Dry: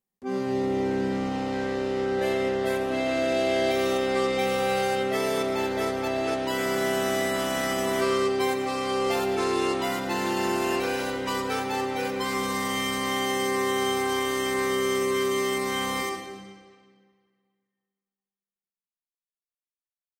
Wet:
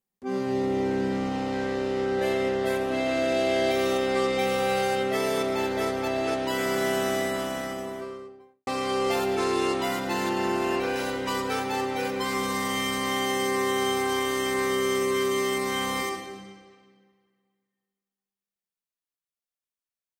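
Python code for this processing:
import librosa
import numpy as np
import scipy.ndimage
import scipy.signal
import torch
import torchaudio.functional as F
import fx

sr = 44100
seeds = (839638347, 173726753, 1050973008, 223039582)

y = fx.studio_fade_out(x, sr, start_s=6.9, length_s=1.77)
y = fx.high_shelf(y, sr, hz=5100.0, db=-9.0, at=(10.29, 10.96))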